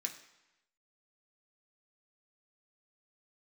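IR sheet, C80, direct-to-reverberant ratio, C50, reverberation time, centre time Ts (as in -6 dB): 12.5 dB, 1.5 dB, 10.0 dB, 0.95 s, 16 ms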